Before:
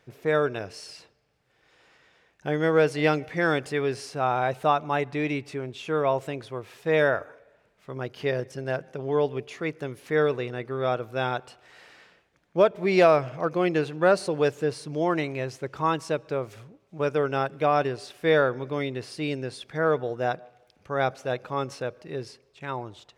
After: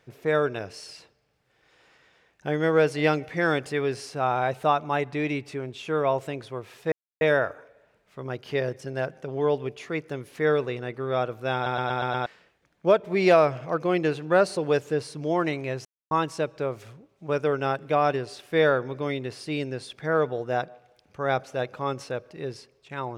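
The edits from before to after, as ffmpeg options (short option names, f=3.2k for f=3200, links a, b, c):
-filter_complex "[0:a]asplit=10[a][b][c][d][e][f][g][h][i][j];[a]atrim=end=6.92,asetpts=PTS-STARTPTS,afade=t=out:st=6.916:d=0.004:c=hsin,apad=pad_dur=0.29[k];[b]atrim=start=6.92:end=11.372,asetpts=PTS-STARTPTS,afade=t=in:d=0.004:c=hsin[l];[c]atrim=start=11.248:end=11.372[m];[d]atrim=start=11.248:end=11.372[n];[e]atrim=start=11.248:end=11.372[o];[f]atrim=start=11.248:end=11.372[p];[g]atrim=start=11.248:end=11.372[q];[h]atrim=start=11.968:end=15.56,asetpts=PTS-STARTPTS,afade=t=out:st=3.588:d=0.004:c=hsin[r];[i]atrim=start=15.56:end=15.82,asetpts=PTS-STARTPTS,volume=0[s];[j]atrim=start=15.82,asetpts=PTS-STARTPTS,afade=t=in:d=0.004:c=hsin[t];[k][l]concat=n=2:v=0:a=1[u];[u][m]acrossfade=d=0.004:c1=hsin:c2=hsin[v];[v][n]acrossfade=d=0.004:c1=hsin:c2=hsin[w];[w][o]acrossfade=d=0.004:c1=hsin:c2=hsin[x];[x][p]acrossfade=d=0.004:c1=hsin:c2=hsin[y];[y][q]acrossfade=d=0.004:c1=hsin:c2=hsin[z];[r][s][t]concat=n=3:v=0:a=1[aa];[z][aa]acrossfade=d=0.004:c1=hsin:c2=hsin"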